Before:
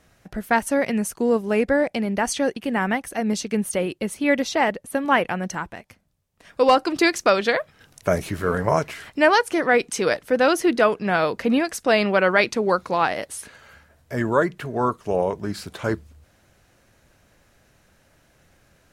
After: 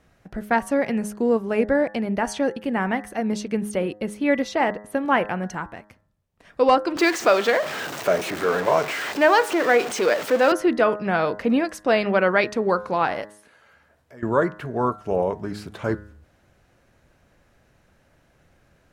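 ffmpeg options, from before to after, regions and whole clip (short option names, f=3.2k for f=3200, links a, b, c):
-filter_complex "[0:a]asettb=1/sr,asplit=3[a][b][c];[a]atrim=end=6.974[d];[b]atrim=start=6.97:end=10.52,asetpts=PTS-STARTPTS,afade=t=in:d=0.004:c=qsin,afade=t=out:st=3.546:d=0.004:c=qsin,aeval=exprs='val(0)+0.5*0.0944*sgn(val(0))':c=same,highpass=320,equalizer=f=11k:t=o:w=0.21:g=-13[e];[c]atrim=start=10.516[f];[d][e]acrossfade=d=0.004:c1=hsin:c2=qsin[g];[g][f]acrossfade=d=0.004:c1=qsin:c2=hsin,asettb=1/sr,asplit=3[h][i][j];[h]atrim=end=13.254[k];[i]atrim=start=13.25:end=14.23,asetpts=PTS-STARTPTS,afade=t=in:d=0.004:c=qsin,afade=t=out:st=0.976:d=0.004:c=qsin,lowshelf=f=160:g=-11.5,bandreject=f=392:t=h:w=4,bandreject=f=784:t=h:w=4,bandreject=f=1.176k:t=h:w=4,bandreject=f=1.568k:t=h:w=4,bandreject=f=1.96k:t=h:w=4,bandreject=f=2.352k:t=h:w=4,bandreject=f=2.744k:t=h:w=4,bandreject=f=3.136k:t=h:w=4,bandreject=f=3.528k:t=h:w=4,bandreject=f=3.92k:t=h:w=4,bandreject=f=4.312k:t=h:w=4,bandreject=f=4.704k:t=h:w=4,bandreject=f=5.096k:t=h:w=4,bandreject=f=5.488k:t=h:w=4,bandreject=f=5.88k:t=h:w=4,bandreject=f=6.272k:t=h:w=4,bandreject=f=6.664k:t=h:w=4,bandreject=f=7.056k:t=h:w=4,bandreject=f=7.448k:t=h:w=4,bandreject=f=7.84k:t=h:w=4,bandreject=f=8.232k:t=h:w=4,bandreject=f=8.624k:t=h:w=4,bandreject=f=9.016k:t=h:w=4,bandreject=f=9.408k:t=h:w=4,bandreject=f=9.8k:t=h:w=4,bandreject=f=10.192k:t=h:w=4,bandreject=f=10.584k:t=h:w=4,bandreject=f=10.976k:t=h:w=4,bandreject=f=11.368k:t=h:w=4,bandreject=f=11.76k:t=h:w=4,bandreject=f=12.152k:t=h:w=4,bandreject=f=12.544k:t=h:w=4,bandreject=f=12.936k:t=h:w=4,acompressor=threshold=-53dB:ratio=2:attack=3.2:release=140:knee=1:detection=peak[l];[j]atrim=start=14.226[m];[k][l]acrossfade=d=0.004:c1=hsin:c2=qsin[n];[n][m]acrossfade=d=0.004:c1=qsin:c2=hsin,highshelf=f=3.2k:g=-9,bandreject=f=104.3:t=h:w=4,bandreject=f=208.6:t=h:w=4,bandreject=f=312.9:t=h:w=4,bandreject=f=417.2:t=h:w=4,bandreject=f=521.5:t=h:w=4,bandreject=f=625.8:t=h:w=4,bandreject=f=730.1:t=h:w=4,bandreject=f=834.4:t=h:w=4,bandreject=f=938.7:t=h:w=4,bandreject=f=1.043k:t=h:w=4,bandreject=f=1.1473k:t=h:w=4,bandreject=f=1.2516k:t=h:w=4,bandreject=f=1.3559k:t=h:w=4,bandreject=f=1.4602k:t=h:w=4,bandreject=f=1.5645k:t=h:w=4,bandreject=f=1.6688k:t=h:w=4,bandreject=f=1.7731k:t=h:w=4,bandreject=f=1.8774k:t=h:w=4,bandreject=f=1.9817k:t=h:w=4"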